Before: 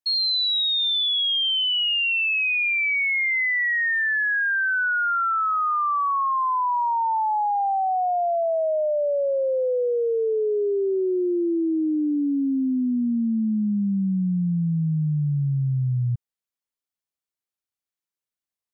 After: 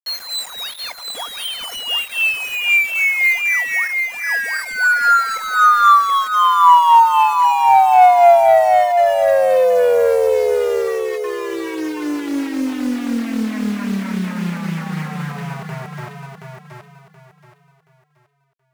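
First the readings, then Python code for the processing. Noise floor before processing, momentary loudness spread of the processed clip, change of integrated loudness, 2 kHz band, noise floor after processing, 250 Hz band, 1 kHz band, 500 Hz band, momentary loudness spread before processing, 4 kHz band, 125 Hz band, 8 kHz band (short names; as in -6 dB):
under -85 dBFS, 16 LU, +7.0 dB, +5.0 dB, -57 dBFS, +0.5 dB, +11.5 dB, +8.5 dB, 4 LU, -2.5 dB, -4.5 dB, n/a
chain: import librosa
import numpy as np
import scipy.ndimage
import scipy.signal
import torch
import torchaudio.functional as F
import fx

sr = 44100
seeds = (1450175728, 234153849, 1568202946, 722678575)

p1 = scipy.signal.medfilt(x, 25)
p2 = fx.harmonic_tremolo(p1, sr, hz=3.8, depth_pct=70, crossover_hz=470.0)
p3 = fx.low_shelf(p2, sr, hz=460.0, db=-11.0)
p4 = p3 + 0.82 * np.pad(p3, (int(4.2 * sr / 1000.0), 0))[:len(p3)]
p5 = fx.rider(p4, sr, range_db=4, speed_s=2.0)
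p6 = p4 + F.gain(torch.from_numpy(p5), 2.0).numpy()
p7 = fx.quant_dither(p6, sr, seeds[0], bits=6, dither='none')
p8 = fx.band_shelf(p7, sr, hz=1100.0, db=9.5, octaves=2.5)
p9 = fx.echo_feedback(p8, sr, ms=726, feedback_pct=30, wet_db=-5)
y = fx.doppler_dist(p9, sr, depth_ms=0.25)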